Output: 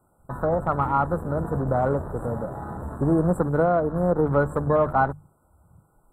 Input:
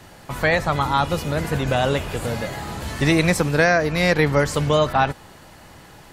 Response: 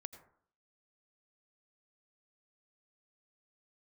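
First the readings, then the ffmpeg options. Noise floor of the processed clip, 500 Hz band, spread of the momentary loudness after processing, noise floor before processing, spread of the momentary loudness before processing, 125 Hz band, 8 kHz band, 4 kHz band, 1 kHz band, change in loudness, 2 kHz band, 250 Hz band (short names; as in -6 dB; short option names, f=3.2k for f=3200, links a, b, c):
-64 dBFS, -2.0 dB, 10 LU, -46 dBFS, 10 LU, -3.0 dB, under -20 dB, under -30 dB, -2.0 dB, -3.5 dB, -13.0 dB, -2.5 dB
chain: -af "afftfilt=real='re*(1-between(b*sr/4096,1500,7400))':imag='im*(1-between(b*sr/4096,1500,7400))':win_size=4096:overlap=0.75,afwtdn=0.0282,bandreject=f=50:t=h:w=6,bandreject=f=100:t=h:w=6,bandreject=f=150:t=h:w=6,volume=-2dB"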